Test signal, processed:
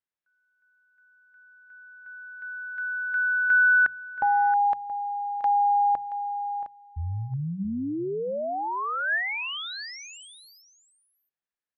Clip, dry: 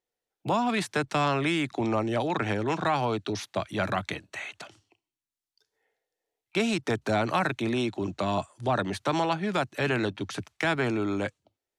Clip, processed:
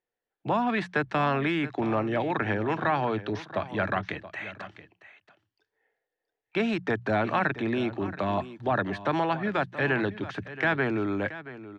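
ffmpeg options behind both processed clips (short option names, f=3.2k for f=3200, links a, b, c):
-af "lowpass=2.7k,equalizer=f=1.7k:t=o:w=0.24:g=6.5,bandreject=f=60:t=h:w=6,bandreject=f=120:t=h:w=6,bandreject=f=180:t=h:w=6,aecho=1:1:676:0.178"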